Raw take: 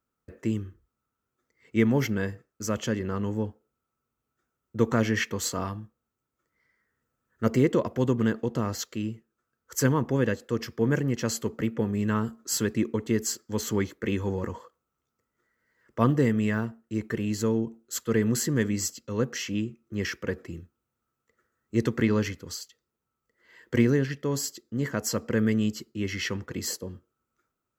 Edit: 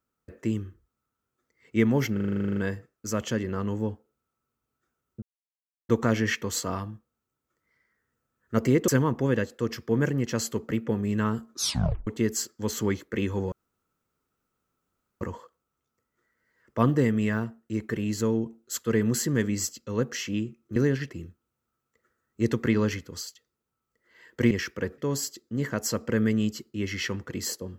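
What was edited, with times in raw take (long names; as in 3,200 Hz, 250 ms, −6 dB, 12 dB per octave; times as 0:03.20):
0:02.13: stutter 0.04 s, 12 plays
0:04.78: splice in silence 0.67 s
0:07.77–0:09.78: remove
0:12.43: tape stop 0.54 s
0:14.42: splice in room tone 1.69 s
0:19.97–0:20.44: swap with 0:23.85–0:24.19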